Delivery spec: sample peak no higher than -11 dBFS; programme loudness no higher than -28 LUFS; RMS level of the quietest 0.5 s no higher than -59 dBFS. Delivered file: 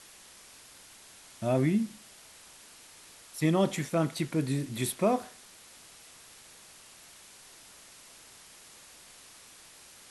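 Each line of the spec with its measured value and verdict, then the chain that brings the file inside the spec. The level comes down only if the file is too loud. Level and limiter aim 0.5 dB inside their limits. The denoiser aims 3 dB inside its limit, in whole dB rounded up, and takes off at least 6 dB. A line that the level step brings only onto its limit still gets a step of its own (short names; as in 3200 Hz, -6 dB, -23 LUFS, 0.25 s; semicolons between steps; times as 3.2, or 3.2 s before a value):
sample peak -14.0 dBFS: OK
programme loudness -29.5 LUFS: OK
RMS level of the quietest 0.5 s -53 dBFS: fail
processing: denoiser 9 dB, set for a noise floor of -53 dBFS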